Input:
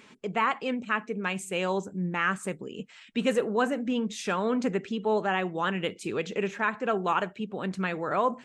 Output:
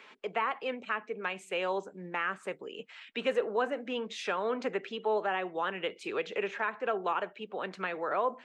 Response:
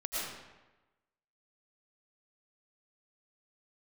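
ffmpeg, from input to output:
-filter_complex "[0:a]acrossover=split=410 4400:gain=0.0891 1 0.158[link_01][link_02][link_03];[link_01][link_02][link_03]amix=inputs=3:normalize=0,acrossover=split=490[link_04][link_05];[link_05]acompressor=threshold=-38dB:ratio=2[link_06];[link_04][link_06]amix=inputs=2:normalize=0,volume=2.5dB"

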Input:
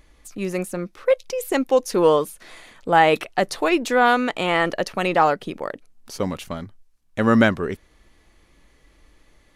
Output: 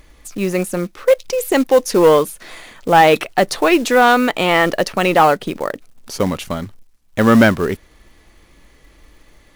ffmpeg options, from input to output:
ffmpeg -i in.wav -af "acrusher=bits=5:mode=log:mix=0:aa=0.000001,acontrast=86" out.wav

